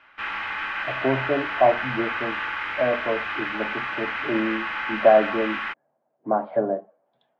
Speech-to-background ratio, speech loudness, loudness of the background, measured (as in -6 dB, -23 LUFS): 3.5 dB, -24.5 LUFS, -28.0 LUFS